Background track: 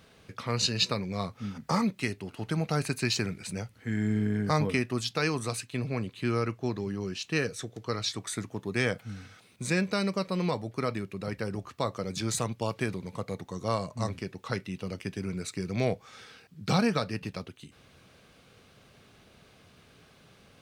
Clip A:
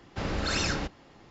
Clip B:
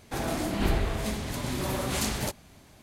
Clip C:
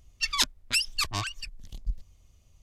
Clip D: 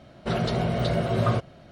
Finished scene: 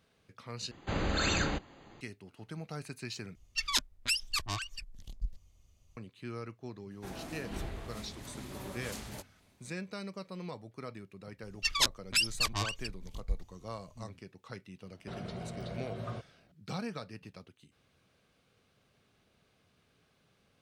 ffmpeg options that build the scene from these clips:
-filter_complex "[3:a]asplit=2[s0][s1];[0:a]volume=0.224[s2];[1:a]asuperstop=centerf=5400:order=12:qfactor=5[s3];[s2]asplit=3[s4][s5][s6];[s4]atrim=end=0.714[s7];[s3]atrim=end=1.3,asetpts=PTS-STARTPTS,volume=0.891[s8];[s5]atrim=start=2.006:end=3.354[s9];[s0]atrim=end=2.62,asetpts=PTS-STARTPTS,volume=0.562[s10];[s6]atrim=start=5.966[s11];[2:a]atrim=end=2.82,asetpts=PTS-STARTPTS,volume=0.2,afade=t=in:d=0.004:c=hsin,afade=t=out:st=2.816:d=0.004:c=hsin,adelay=6910[s12];[s1]atrim=end=2.62,asetpts=PTS-STARTPTS,volume=0.75,afade=t=in:d=0.004:c=hsin,afade=t=out:st=2.616:d=0.004:c=hsin,adelay=11420[s13];[4:a]atrim=end=1.71,asetpts=PTS-STARTPTS,volume=0.141,afade=t=in:d=0.004:c=hsin,afade=t=out:st=1.706:d=0.004:c=hsin,adelay=14810[s14];[s7][s8]acrossfade=d=0.004:c1=hsin:c2=hsin[s15];[s15][s9]acrossfade=d=0.004:c1=hsin:c2=hsin[s16];[s16][s10]acrossfade=d=0.004:c1=hsin:c2=hsin[s17];[s17][s11]acrossfade=d=0.004:c1=hsin:c2=hsin[s18];[s18][s12][s13][s14]amix=inputs=4:normalize=0"

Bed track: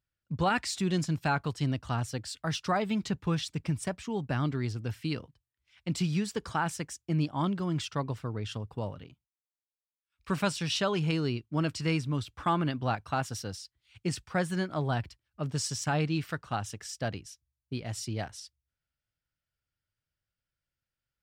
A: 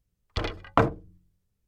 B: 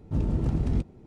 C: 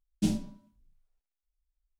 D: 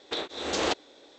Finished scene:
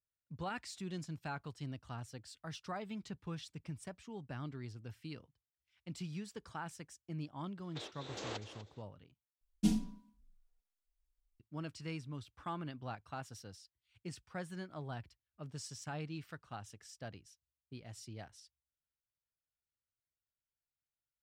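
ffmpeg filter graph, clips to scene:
-filter_complex "[0:a]volume=0.2[s0];[4:a]aecho=1:1:246|492:0.224|0.0381[s1];[3:a]aecho=1:1:4.2:0.97[s2];[s0]asplit=2[s3][s4];[s3]atrim=end=9.414[s5];[s2]atrim=end=1.99,asetpts=PTS-STARTPTS,volume=0.447[s6];[s4]atrim=start=11.396[s7];[s1]atrim=end=1.18,asetpts=PTS-STARTPTS,volume=0.158,afade=t=in:d=0.004:c=hsin,afade=t=out:st=1.176:d=0.004:c=hsin,adelay=7640[s8];[s5][s6]acrossfade=d=0.004:c1=hsin:c2=hsin[s9];[s9][s7]acrossfade=d=0.004:c1=hsin:c2=hsin[s10];[s10][s8]amix=inputs=2:normalize=0"

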